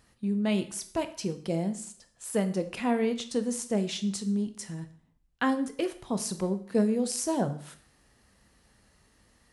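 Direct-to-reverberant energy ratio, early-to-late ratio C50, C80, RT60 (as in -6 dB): 9.0 dB, 13.0 dB, 17.0 dB, 0.60 s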